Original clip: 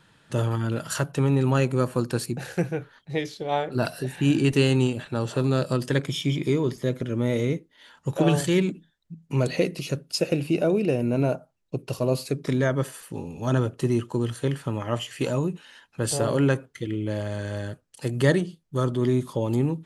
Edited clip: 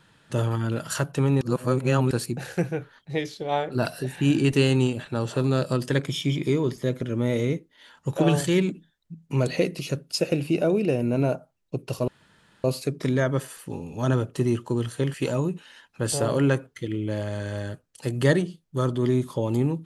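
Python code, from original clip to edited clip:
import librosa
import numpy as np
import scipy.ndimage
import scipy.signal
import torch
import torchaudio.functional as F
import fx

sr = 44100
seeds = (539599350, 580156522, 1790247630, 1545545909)

y = fx.edit(x, sr, fx.reverse_span(start_s=1.41, length_s=0.7),
    fx.insert_room_tone(at_s=12.08, length_s=0.56),
    fx.cut(start_s=14.58, length_s=0.55), tone=tone)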